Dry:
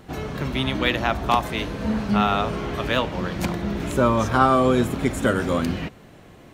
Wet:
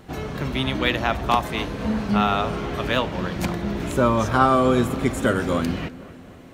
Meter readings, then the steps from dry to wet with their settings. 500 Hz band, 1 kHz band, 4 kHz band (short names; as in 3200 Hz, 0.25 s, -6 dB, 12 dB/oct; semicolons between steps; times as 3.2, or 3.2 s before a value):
0.0 dB, 0.0 dB, 0.0 dB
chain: darkening echo 0.25 s, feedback 57%, low-pass 2400 Hz, level -17 dB